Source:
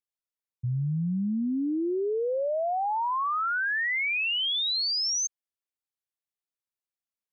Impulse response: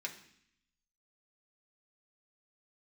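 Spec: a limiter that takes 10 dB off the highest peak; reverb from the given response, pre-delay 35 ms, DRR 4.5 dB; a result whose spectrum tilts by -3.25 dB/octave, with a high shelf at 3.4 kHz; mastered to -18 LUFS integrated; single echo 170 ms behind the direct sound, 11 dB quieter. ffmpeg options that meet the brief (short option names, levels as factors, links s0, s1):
-filter_complex "[0:a]highshelf=f=3400:g=5,alimiter=level_in=2.11:limit=0.0631:level=0:latency=1,volume=0.473,aecho=1:1:170:0.282,asplit=2[s0][s1];[1:a]atrim=start_sample=2205,adelay=35[s2];[s1][s2]afir=irnorm=-1:irlink=0,volume=0.596[s3];[s0][s3]amix=inputs=2:normalize=0,volume=4.73"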